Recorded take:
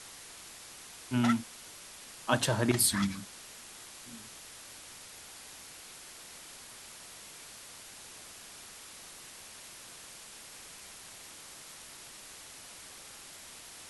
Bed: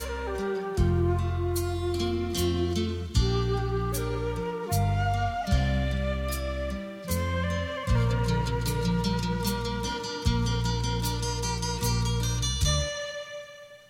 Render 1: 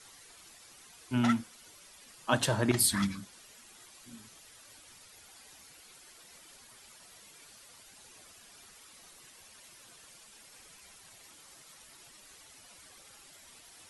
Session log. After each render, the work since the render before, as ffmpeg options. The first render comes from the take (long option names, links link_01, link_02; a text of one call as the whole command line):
ffmpeg -i in.wav -af "afftdn=noise_reduction=10:noise_floor=-50" out.wav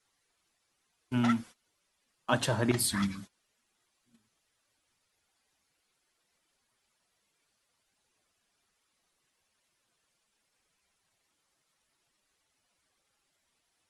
ffmpeg -i in.wav -af "highshelf=frequency=5700:gain=-6,agate=range=-20dB:threshold=-45dB:ratio=16:detection=peak" out.wav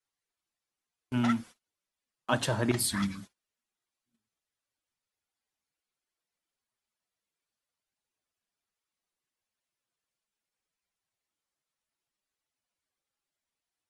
ffmpeg -i in.wav -af "agate=range=-14dB:threshold=-53dB:ratio=16:detection=peak" out.wav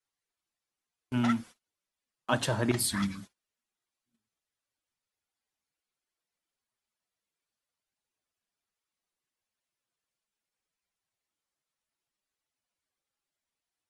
ffmpeg -i in.wav -af anull out.wav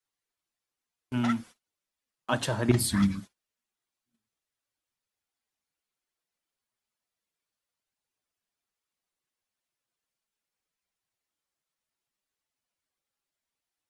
ffmpeg -i in.wav -filter_complex "[0:a]asettb=1/sr,asplit=3[link_01][link_02][link_03];[link_01]atrim=end=2.694[link_04];[link_02]atrim=start=2.69:end=3.2,asetpts=PTS-STARTPTS,afade=type=in:duration=0.004:curve=qsin,afade=type=out:start_time=0.506:duration=0.004:curve=qsin,lowshelf=frequency=350:gain=9.5[link_05];[link_03]atrim=start=3.196[link_06];[link_04][link_05]acrossfade=duration=0.004:curve1=hsin:curve2=qsin[link_07];[link_07][link_06]acrossfade=duration=0.004:curve1=qsin:curve2=hsin" out.wav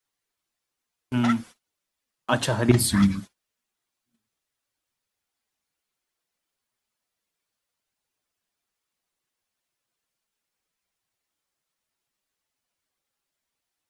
ffmpeg -i in.wav -af "volume=5dB" out.wav